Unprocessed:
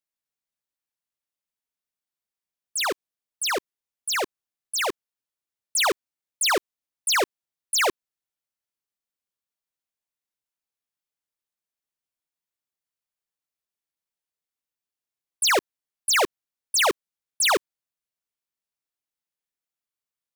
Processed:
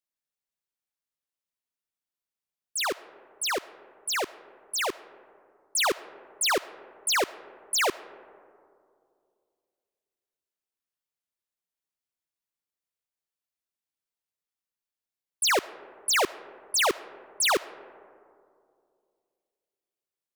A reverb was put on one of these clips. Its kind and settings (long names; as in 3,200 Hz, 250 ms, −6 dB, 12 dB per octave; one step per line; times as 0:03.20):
comb and all-pass reverb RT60 2.4 s, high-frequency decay 0.3×, pre-delay 35 ms, DRR 17.5 dB
level −3 dB